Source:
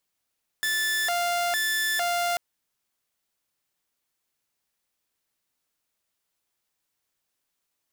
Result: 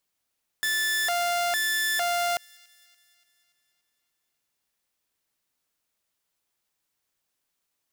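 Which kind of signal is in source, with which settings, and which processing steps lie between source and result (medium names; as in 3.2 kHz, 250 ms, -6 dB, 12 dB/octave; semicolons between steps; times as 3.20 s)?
siren hi-lo 698–1750 Hz 1.1 per s saw -21 dBFS 1.74 s
feedback echo behind a high-pass 288 ms, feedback 54%, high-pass 2.9 kHz, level -23.5 dB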